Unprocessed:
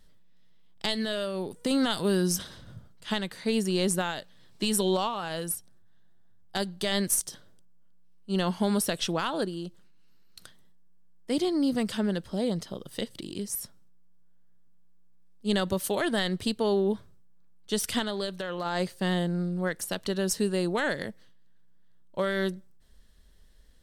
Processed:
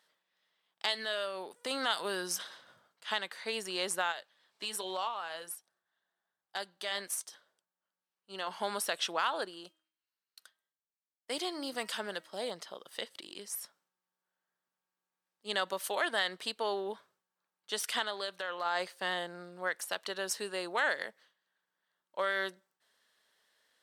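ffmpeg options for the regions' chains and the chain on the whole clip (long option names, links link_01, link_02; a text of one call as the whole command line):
ffmpeg -i in.wav -filter_complex "[0:a]asettb=1/sr,asplit=3[link_01][link_02][link_03];[link_01]atrim=end=4.124[link_04];[link_02]atrim=start=4.12:end=8.51,asetpts=PTS-STARTPTS,afade=type=in:duration=0.004:curve=qsin,afade=type=out:start_time=4.386:duration=0.004:curve=qsin,flanger=delay=1.4:depth=3.7:regen=-77:speed=1.2:shape=triangular,asoftclip=type=hard:threshold=-21.5dB[link_05];[link_03]atrim=start=8.506[link_06];[link_04][link_05]acrossfade=duration=0.004:curve1=hsin:curve2=qsin[link_07];[link_07][link_06]acrossfade=duration=0.004:curve1=qsin:curve2=hsin,asettb=1/sr,asplit=3[link_08][link_09][link_10];[link_08]atrim=end=9.644[link_11];[link_09]atrim=start=9.64:end=12.51,asetpts=PTS-STARTPTS,afade=type=in:duration=0.004:curve=qsin,afade=type=out:start_time=2.866:duration=0.004:curve=qsin,agate=range=-33dB:threshold=-43dB:ratio=3:release=100:detection=peak,highshelf=frequency=5600:gain=7,bandreject=frequency=317.7:width_type=h:width=4,bandreject=frequency=635.4:width_type=h:width=4,bandreject=frequency=953.1:width_type=h:width=4,bandreject=frequency=1270.8:width_type=h:width=4,bandreject=frequency=1588.5:width_type=h:width=4,bandreject=frequency=1906.2:width_type=h:width=4,bandreject=frequency=2223.9:width_type=h:width=4,bandreject=frequency=2541.6:width_type=h:width=4,bandreject=frequency=2859.3:width_type=h:width=4,bandreject=frequency=3177:width_type=h:width=4[link_12];[link_10]atrim=start=12.506[link_13];[link_11][link_12]acrossfade=duration=0.004:curve1=hsin:curve2=qsin[link_14];[link_14][link_13]acrossfade=duration=0.004:curve1=qsin:curve2=hsin,highpass=850,highshelf=frequency=3500:gain=-9.5,volume=2.5dB" out.wav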